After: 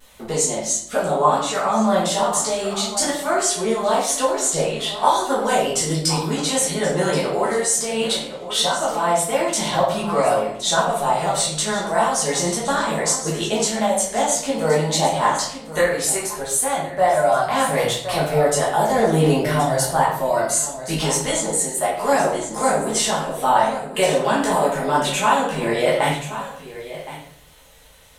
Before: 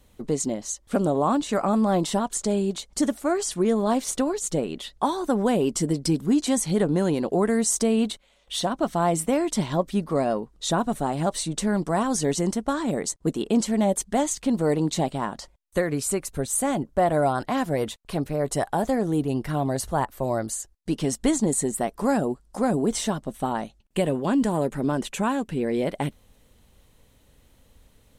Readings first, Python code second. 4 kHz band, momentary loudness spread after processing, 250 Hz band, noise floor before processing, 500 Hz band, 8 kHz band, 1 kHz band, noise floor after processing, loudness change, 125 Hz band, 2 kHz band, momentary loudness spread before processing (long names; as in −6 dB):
+11.0 dB, 4 LU, −2.0 dB, −59 dBFS, +5.5 dB, +8.5 dB, +9.0 dB, −37 dBFS, +5.5 dB, +2.0 dB, +10.5 dB, 6 LU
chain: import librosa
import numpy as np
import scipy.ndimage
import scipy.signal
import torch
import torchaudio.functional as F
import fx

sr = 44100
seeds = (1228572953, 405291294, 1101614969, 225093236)

y = scipy.signal.sosfilt(scipy.signal.butter(2, 57.0, 'highpass', fs=sr, output='sos'), x)
y = fx.peak_eq(y, sr, hz=270.0, db=-14.0, octaves=1.5)
y = y + 10.0 ** (-14.5 / 20.0) * np.pad(y, (int(1072 * sr / 1000.0), 0))[:len(y)]
y = fx.vibrato(y, sr, rate_hz=0.42, depth_cents=14.0)
y = fx.peak_eq(y, sr, hz=84.0, db=-14.5, octaves=1.9)
y = fx.rider(y, sr, range_db=10, speed_s=0.5)
y = fx.chorus_voices(y, sr, voices=4, hz=0.59, base_ms=15, depth_ms=4.1, mix_pct=45)
y = fx.room_shoebox(y, sr, seeds[0], volume_m3=120.0, walls='mixed', distance_m=1.4)
y = y * librosa.db_to_amplitude(8.0)